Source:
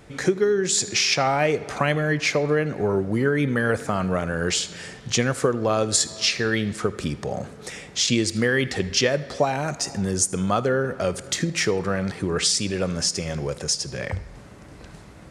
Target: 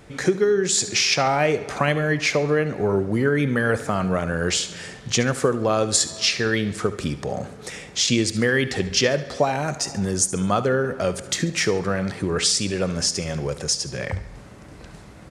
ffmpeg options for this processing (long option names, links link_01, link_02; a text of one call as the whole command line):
ffmpeg -i in.wav -af "aecho=1:1:70|140|210|280:0.15|0.0643|0.0277|0.0119,volume=1dB" out.wav